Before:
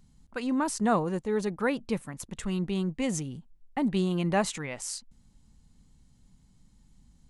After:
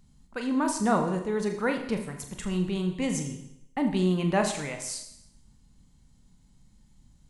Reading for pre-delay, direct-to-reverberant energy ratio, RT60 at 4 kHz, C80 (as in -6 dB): 27 ms, 4.5 dB, 0.75 s, 10.5 dB